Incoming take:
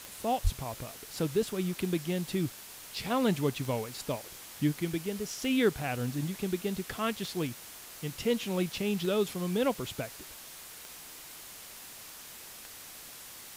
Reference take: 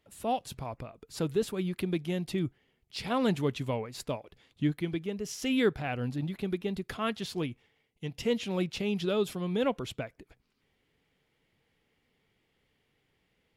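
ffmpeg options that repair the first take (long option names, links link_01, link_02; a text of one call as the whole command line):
ffmpeg -i in.wav -filter_complex "[0:a]adeclick=threshold=4,asplit=3[link_01][link_02][link_03];[link_01]afade=type=out:start_time=0.43:duration=0.02[link_04];[link_02]highpass=frequency=140:width=0.5412,highpass=frequency=140:width=1.3066,afade=type=in:start_time=0.43:duration=0.02,afade=type=out:start_time=0.55:duration=0.02[link_05];[link_03]afade=type=in:start_time=0.55:duration=0.02[link_06];[link_04][link_05][link_06]amix=inputs=3:normalize=0,afwtdn=0.005" out.wav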